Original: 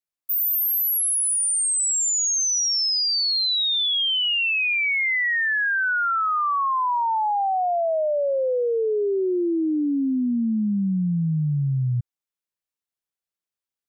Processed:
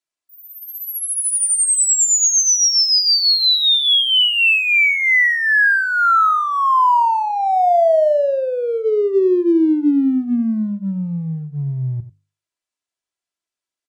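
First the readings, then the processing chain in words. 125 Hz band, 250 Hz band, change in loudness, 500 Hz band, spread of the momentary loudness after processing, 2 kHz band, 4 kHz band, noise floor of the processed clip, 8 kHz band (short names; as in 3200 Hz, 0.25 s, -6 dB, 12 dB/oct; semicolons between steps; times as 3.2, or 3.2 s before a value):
-0.5 dB, +5.5 dB, +6.5 dB, +6.5 dB, 12 LU, +7.0 dB, +7.0 dB, under -85 dBFS, +6.0 dB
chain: LPF 9500 Hz 24 dB/oct; low shelf 99 Hz -7 dB; notches 50/100/150/200/250/300/350/400/450 Hz; comb 3 ms, depth 42%; in parallel at -10.5 dB: crossover distortion -35.5 dBFS; on the sum: echo 92 ms -14.5 dB; gain +4.5 dB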